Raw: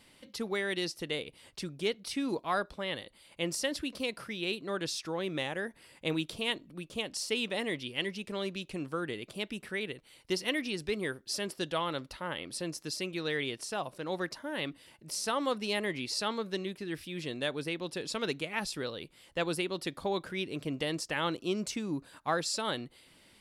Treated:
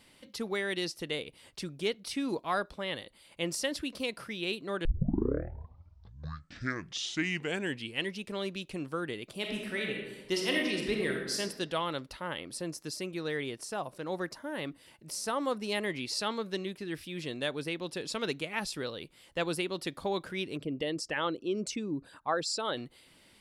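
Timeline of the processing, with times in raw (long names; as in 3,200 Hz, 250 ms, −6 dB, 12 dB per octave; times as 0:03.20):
0:04.85: tape start 3.26 s
0:09.36–0:11.39: thrown reverb, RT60 1.2 s, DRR 0 dB
0:12.39–0:15.72: dynamic equaliser 3,200 Hz, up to −6 dB, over −50 dBFS, Q 1
0:20.57–0:22.77: spectral envelope exaggerated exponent 1.5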